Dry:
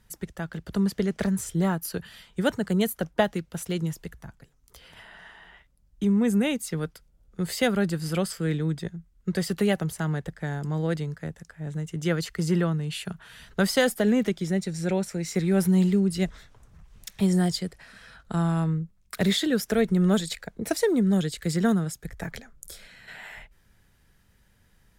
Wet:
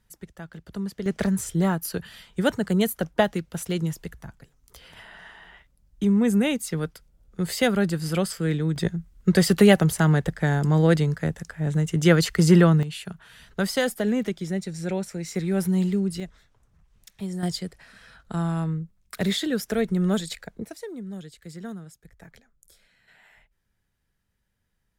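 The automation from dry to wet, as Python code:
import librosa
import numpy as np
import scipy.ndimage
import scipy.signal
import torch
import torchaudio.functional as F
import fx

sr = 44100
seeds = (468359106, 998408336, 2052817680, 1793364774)

y = fx.gain(x, sr, db=fx.steps((0.0, -6.5), (1.06, 2.0), (8.76, 8.5), (12.83, -2.0), (16.2, -9.5), (17.43, -1.5), (20.65, -14.0)))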